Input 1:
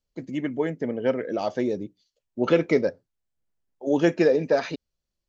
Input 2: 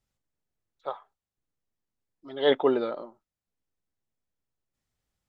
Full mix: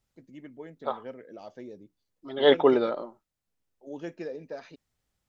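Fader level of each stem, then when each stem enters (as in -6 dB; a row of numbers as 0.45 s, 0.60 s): -17.5 dB, +3.0 dB; 0.00 s, 0.00 s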